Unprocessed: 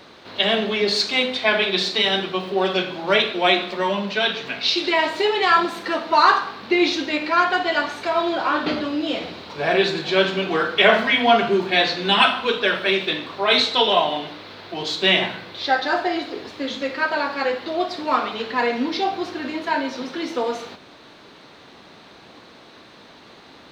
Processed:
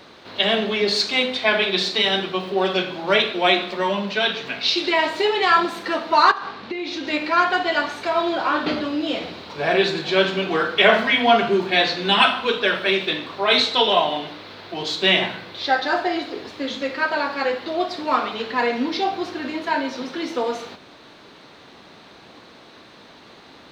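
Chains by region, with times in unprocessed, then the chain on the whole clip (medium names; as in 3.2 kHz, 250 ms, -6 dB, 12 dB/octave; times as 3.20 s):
6.31–7.07 s: distance through air 52 m + compression 12:1, threshold -24 dBFS
whole clip: none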